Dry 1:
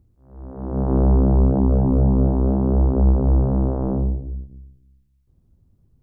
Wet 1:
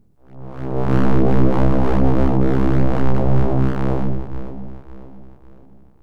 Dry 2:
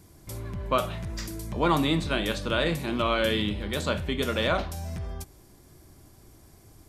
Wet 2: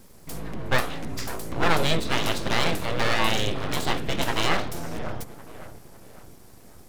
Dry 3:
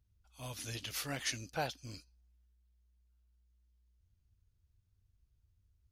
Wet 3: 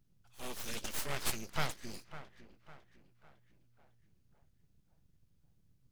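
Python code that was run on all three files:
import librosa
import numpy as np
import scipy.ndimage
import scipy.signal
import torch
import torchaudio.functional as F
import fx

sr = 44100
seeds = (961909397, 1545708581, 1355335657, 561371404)

y = fx.echo_wet_lowpass(x, sr, ms=553, feedback_pct=42, hz=1600.0, wet_db=-13.5)
y = np.abs(y)
y = y * 10.0 ** (4.5 / 20.0)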